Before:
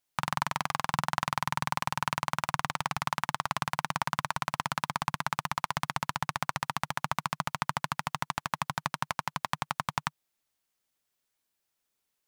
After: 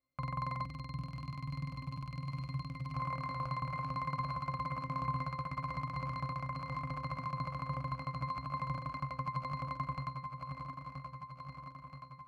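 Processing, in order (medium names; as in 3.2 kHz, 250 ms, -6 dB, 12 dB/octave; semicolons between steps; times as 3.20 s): backward echo that repeats 488 ms, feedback 78%, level -10 dB; peak limiter -13 dBFS, peak gain reduction 5 dB; careless resampling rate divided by 4×, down none, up hold; 0.61–2.94 s: high-order bell 900 Hz -12 dB 2.5 oct; pitch-class resonator C, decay 0.18 s; trim +9.5 dB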